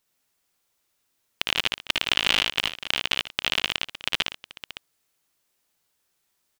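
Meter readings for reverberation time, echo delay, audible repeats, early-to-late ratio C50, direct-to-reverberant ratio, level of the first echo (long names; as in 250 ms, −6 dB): no reverb audible, 57 ms, 4, no reverb audible, no reverb audible, −4.0 dB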